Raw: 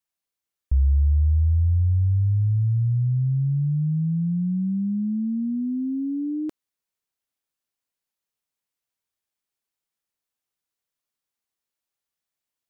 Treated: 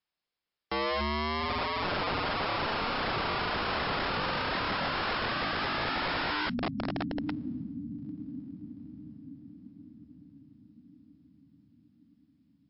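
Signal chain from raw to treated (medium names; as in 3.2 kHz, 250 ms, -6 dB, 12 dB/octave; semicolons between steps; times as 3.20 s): echo that smears into a reverb 919 ms, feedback 50%, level -11 dB; integer overflow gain 28.5 dB; trim +3 dB; MP3 56 kbps 12 kHz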